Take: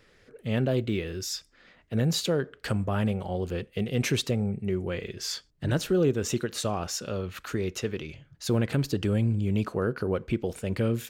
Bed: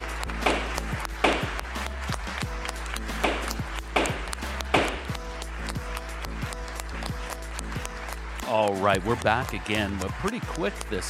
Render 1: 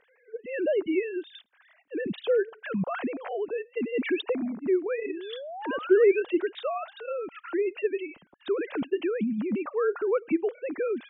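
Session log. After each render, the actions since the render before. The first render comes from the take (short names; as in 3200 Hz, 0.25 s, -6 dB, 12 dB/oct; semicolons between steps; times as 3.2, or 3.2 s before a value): sine-wave speech; 5.06–6.2 painted sound rise 270–2700 Hz -38 dBFS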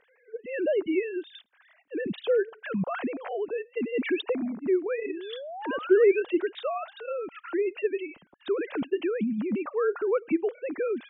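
nothing audible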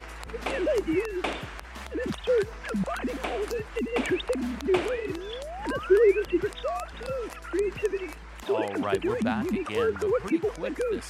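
add bed -8.5 dB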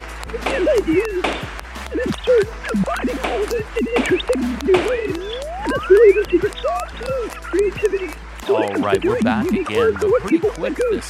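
gain +9.5 dB; limiter -2 dBFS, peak gain reduction 1 dB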